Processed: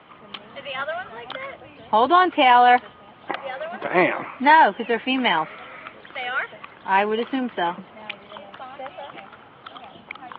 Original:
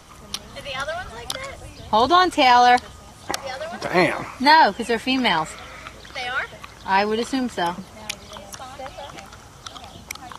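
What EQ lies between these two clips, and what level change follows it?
high-pass filter 210 Hz 12 dB per octave
Butterworth low-pass 3,200 Hz 48 dB per octave
0.0 dB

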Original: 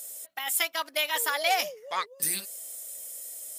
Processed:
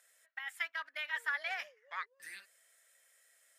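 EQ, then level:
resonant band-pass 1,700 Hz, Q 4.1
−1.0 dB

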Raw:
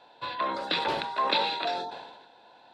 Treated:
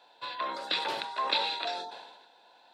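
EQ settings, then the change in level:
high-pass filter 410 Hz 6 dB per octave
high-shelf EQ 5,100 Hz +9.5 dB
−4.0 dB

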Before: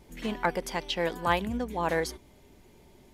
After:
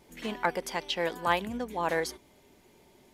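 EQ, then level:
low-shelf EQ 100 Hz −11.5 dB
low-shelf EQ 350 Hz −2.5 dB
0.0 dB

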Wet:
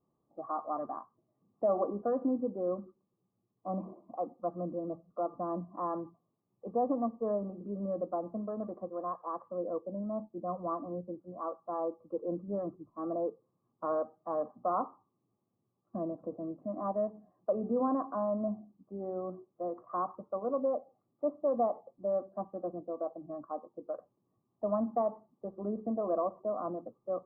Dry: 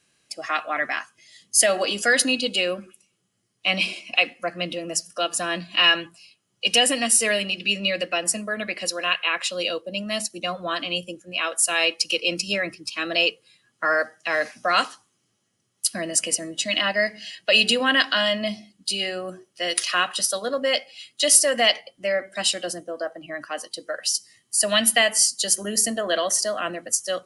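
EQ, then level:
Chebyshev low-pass with heavy ripple 1,200 Hz, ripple 3 dB
high-frequency loss of the air 220 metres
−3.5 dB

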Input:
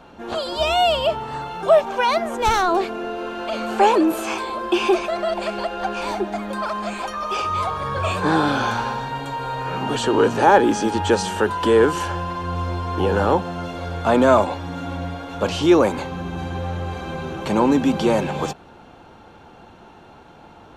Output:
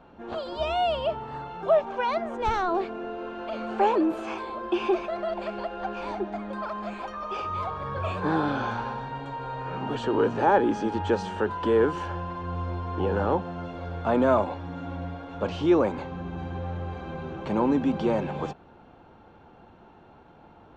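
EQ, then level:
head-to-tape spacing loss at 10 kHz 22 dB
−5.5 dB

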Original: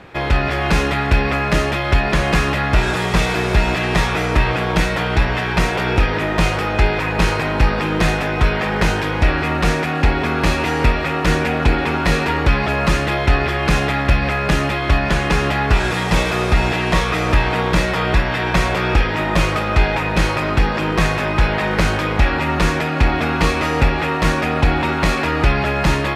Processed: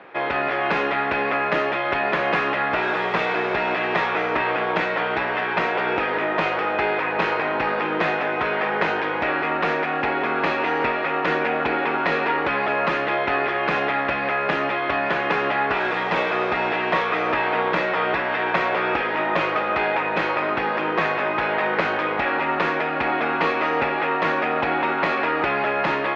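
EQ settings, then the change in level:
band-pass filter 390–2,600 Hz
high-frequency loss of the air 83 metres
0.0 dB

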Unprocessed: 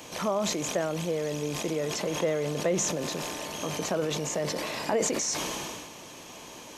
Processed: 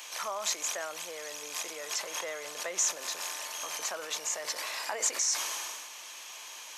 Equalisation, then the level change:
high-pass filter 1,300 Hz 12 dB per octave
dynamic equaliser 3,000 Hz, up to −5 dB, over −48 dBFS, Q 0.97
+3.0 dB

